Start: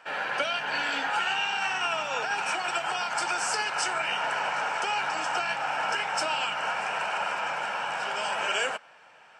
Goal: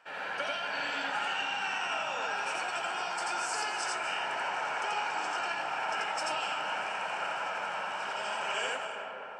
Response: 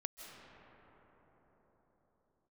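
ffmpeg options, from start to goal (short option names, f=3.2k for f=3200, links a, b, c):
-filter_complex "[0:a]asplit=2[a][b];[1:a]atrim=start_sample=2205,adelay=86[c];[b][c]afir=irnorm=-1:irlink=0,volume=3.5dB[d];[a][d]amix=inputs=2:normalize=0,volume=-8.5dB"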